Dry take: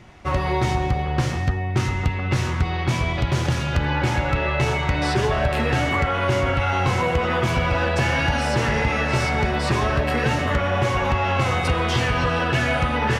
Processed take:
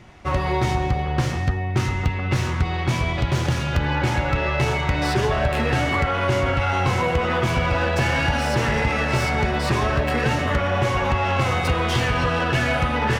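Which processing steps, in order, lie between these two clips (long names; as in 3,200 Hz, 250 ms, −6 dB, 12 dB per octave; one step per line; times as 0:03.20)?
stylus tracing distortion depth 0.031 ms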